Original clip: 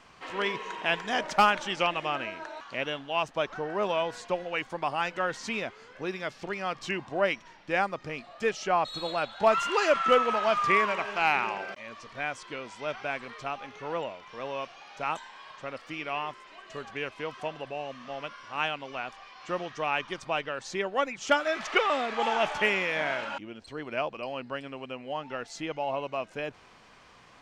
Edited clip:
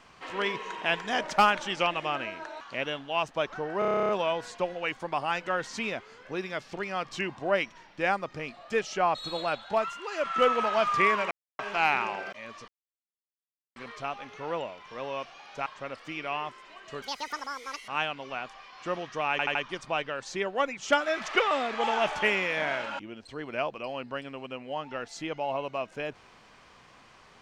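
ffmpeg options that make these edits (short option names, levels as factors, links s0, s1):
-filter_complex "[0:a]asplit=22[s0][s1][s2][s3][s4][s5][s6][s7][s8][s9][s10][s11][s12][s13][s14][s15][s16][s17][s18][s19][s20][s21];[s0]atrim=end=3.822[s22];[s1]atrim=start=3.788:end=3.822[s23];[s2]atrim=start=3.788:end=3.822[s24];[s3]atrim=start=3.788:end=3.822[s25];[s4]atrim=start=3.788:end=3.822[s26];[s5]atrim=start=3.788:end=3.822[s27];[s6]atrim=start=3.788:end=3.822[s28];[s7]atrim=start=3.788:end=3.822[s29];[s8]atrim=start=3.788:end=3.822[s30];[s9]atrim=start=3.788:end=3.822[s31];[s10]atrim=start=3.788:end=9.66,asetpts=PTS-STARTPTS,afade=t=out:st=5.452:d=0.42:silence=0.266073[s32];[s11]atrim=start=9.66:end=9.8,asetpts=PTS-STARTPTS,volume=0.266[s33];[s12]atrim=start=9.8:end=11.01,asetpts=PTS-STARTPTS,afade=t=in:d=0.42:silence=0.266073,afade=t=out:st=1.206:d=0.004:c=hsin,apad=pad_dur=0.28[s34];[s13]atrim=start=11.01:end=12.1,asetpts=PTS-STARTPTS,afade=t=in:d=0.004:c=hsin,afade=t=out:st=1.086:d=0.004:c=hsin[s35];[s14]atrim=start=12.1:end=13.18,asetpts=PTS-STARTPTS,volume=0[s36];[s15]atrim=start=13.18:end=15.082,asetpts=PTS-STARTPTS,afade=t=in:d=0.004:c=hsin[s37];[s16]atrim=start=15.478:end=16.844[s38];[s17]atrim=start=16.84:end=18.51,asetpts=PTS-STARTPTS,asetrate=85554,aresample=44100,atrim=end_sample=37962,asetpts=PTS-STARTPTS[s39];[s18]atrim=start=18.506:end=20.022[s40];[s19]atrim=start=19.938:end=20.022[s41];[s20]atrim=start=19.938:end=20.022[s42];[s21]atrim=start=19.938[s43];[s22][s23]acrossfade=d=0.004:c1=hsin:c2=hsin[s44];[s44][s24]acrossfade=d=0.004:c1=hsin:c2=hsin[s45];[s45][s25]acrossfade=d=0.004:c1=hsin:c2=hsin[s46];[s46][s26]acrossfade=d=0.004:c1=hsin:c2=hsin[s47];[s47][s27]acrossfade=d=0.004:c1=hsin:c2=hsin[s48];[s48][s28]acrossfade=d=0.004:c1=hsin:c2=hsin[s49];[s49][s29]acrossfade=d=0.004:c1=hsin:c2=hsin[s50];[s50][s30]acrossfade=d=0.004:c1=hsin:c2=hsin[s51];[s51][s31]acrossfade=d=0.004:c1=hsin:c2=hsin[s52];[s32][s33][s34][s35][s36][s37]concat=n=6:v=0:a=1[s53];[s52][s53]acrossfade=d=0.004:c1=hsin:c2=hsin[s54];[s54][s38]acrossfade=d=0.004:c1=hsin:c2=hsin[s55];[s55][s39]acrossfade=d=0.004:c1=hsin:c2=hsin[s56];[s56][s40]acrossfade=d=0.004:c1=hsin:c2=hsin[s57];[s57][s41]acrossfade=d=0.004:c1=hsin:c2=hsin[s58];[s58][s42]acrossfade=d=0.004:c1=hsin:c2=hsin[s59];[s59][s43]acrossfade=d=0.004:c1=hsin:c2=hsin"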